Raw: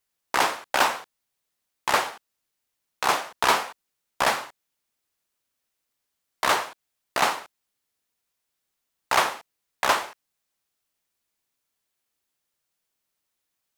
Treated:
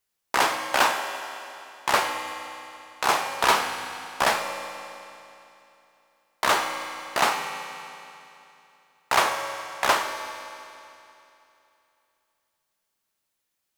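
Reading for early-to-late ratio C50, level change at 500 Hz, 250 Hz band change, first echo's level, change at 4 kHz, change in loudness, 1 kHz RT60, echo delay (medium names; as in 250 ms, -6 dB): 6.0 dB, +1.0 dB, +1.0 dB, no echo, +1.0 dB, -0.5 dB, 2.9 s, no echo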